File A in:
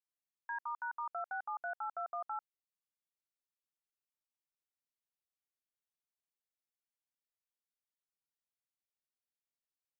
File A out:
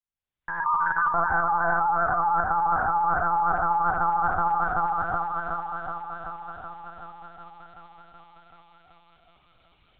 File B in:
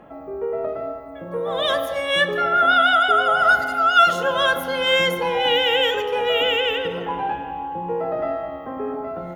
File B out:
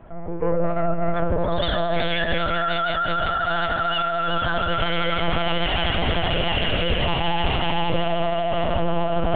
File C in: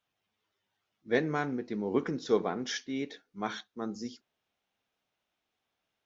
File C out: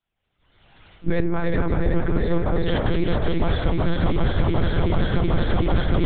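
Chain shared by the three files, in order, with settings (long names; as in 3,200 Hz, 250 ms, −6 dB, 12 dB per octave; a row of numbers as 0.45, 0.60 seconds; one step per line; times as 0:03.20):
feedback delay that plays each chunk backwards 188 ms, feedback 84%, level −4.5 dB
camcorder AGC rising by 29 dB per second
on a send: feedback delay with all-pass diffusion 635 ms, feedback 50%, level −15 dB
on the sum: dynamic equaliser 900 Hz, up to +6 dB, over −35 dBFS, Q 7.1
notch filter 1,100 Hz, Q 14
noise reduction from a noise print of the clip's start 8 dB
brickwall limiter −9 dBFS
reversed playback
downward compressor 10 to 1, threshold −25 dBFS
reversed playback
one-pitch LPC vocoder at 8 kHz 170 Hz
low-shelf EQ 170 Hz +8.5 dB
pitch vibrato 13 Hz 33 cents
level +4.5 dB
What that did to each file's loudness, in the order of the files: +16.5, −3.5, +10.0 LU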